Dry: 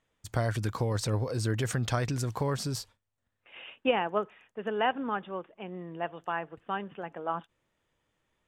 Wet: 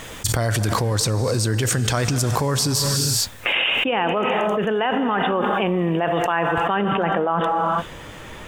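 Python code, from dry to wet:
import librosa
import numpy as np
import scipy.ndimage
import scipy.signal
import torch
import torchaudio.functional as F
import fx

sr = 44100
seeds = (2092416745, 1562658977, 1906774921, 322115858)

y = fx.high_shelf(x, sr, hz=4200.0, db=fx.steps((0.0, 7.5), (6.73, -3.5)))
y = fx.rev_gated(y, sr, seeds[0], gate_ms=440, shape='flat', drr_db=12.0)
y = fx.env_flatten(y, sr, amount_pct=100)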